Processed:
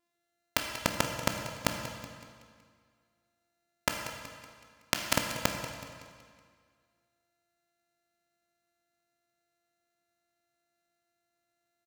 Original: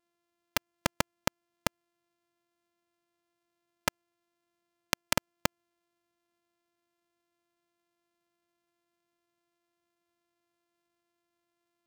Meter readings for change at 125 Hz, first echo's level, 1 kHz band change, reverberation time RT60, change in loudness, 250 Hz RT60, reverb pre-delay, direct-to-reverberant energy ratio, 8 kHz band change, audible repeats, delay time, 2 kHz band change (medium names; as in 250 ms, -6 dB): +2.5 dB, -14.0 dB, +1.5 dB, 2.0 s, +1.0 dB, 2.0 s, 15 ms, 2.5 dB, +2.0 dB, 4, 187 ms, +2.0 dB